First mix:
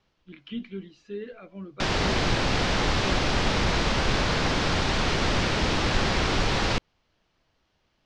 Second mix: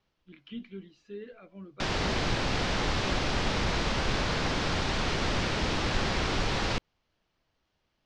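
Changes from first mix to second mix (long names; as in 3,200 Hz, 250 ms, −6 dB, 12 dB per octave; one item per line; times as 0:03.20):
speech −6.0 dB
background −4.5 dB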